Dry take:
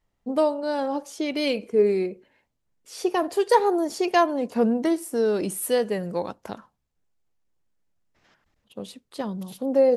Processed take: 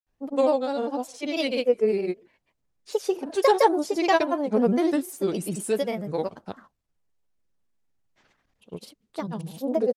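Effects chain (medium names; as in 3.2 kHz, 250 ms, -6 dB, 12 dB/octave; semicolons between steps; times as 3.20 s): granulator, pitch spread up and down by 3 st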